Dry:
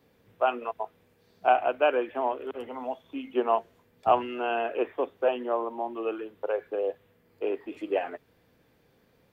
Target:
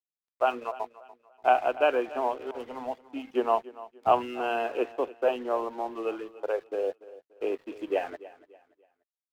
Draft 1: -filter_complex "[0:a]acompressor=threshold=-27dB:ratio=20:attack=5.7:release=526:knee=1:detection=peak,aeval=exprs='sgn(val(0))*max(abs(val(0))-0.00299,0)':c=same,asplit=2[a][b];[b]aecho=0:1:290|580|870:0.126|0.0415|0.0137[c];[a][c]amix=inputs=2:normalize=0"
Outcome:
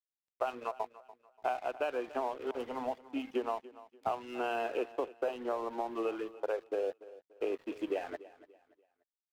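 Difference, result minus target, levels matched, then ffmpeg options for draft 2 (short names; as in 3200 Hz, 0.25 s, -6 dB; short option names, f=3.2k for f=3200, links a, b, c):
compressor: peak gain reduction +14.5 dB
-filter_complex "[0:a]aeval=exprs='sgn(val(0))*max(abs(val(0))-0.00299,0)':c=same,asplit=2[a][b];[b]aecho=0:1:290|580|870:0.126|0.0415|0.0137[c];[a][c]amix=inputs=2:normalize=0"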